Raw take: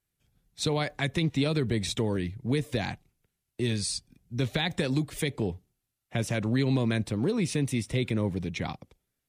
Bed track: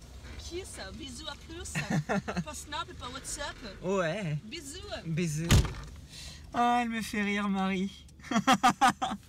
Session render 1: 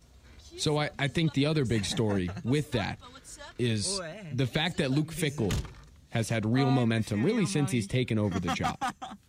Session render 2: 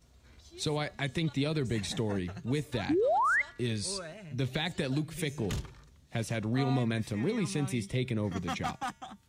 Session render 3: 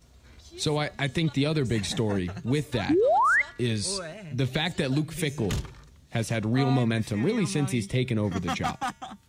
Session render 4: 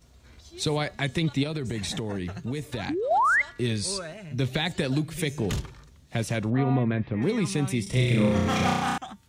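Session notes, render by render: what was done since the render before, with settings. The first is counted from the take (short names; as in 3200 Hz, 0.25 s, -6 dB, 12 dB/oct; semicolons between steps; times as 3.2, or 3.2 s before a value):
add bed track -8.5 dB
2.89–3.42 painted sound rise 270–2200 Hz -22 dBFS; resonator 130 Hz, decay 0.82 s, harmonics odd, mix 40%
gain +5.5 dB
1.43–3.11 compressor, threshold -26 dBFS; 6.5–7.22 Bessel low-pass 1900 Hz, order 6; 7.83–8.98 flutter echo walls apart 5.6 m, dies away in 1.2 s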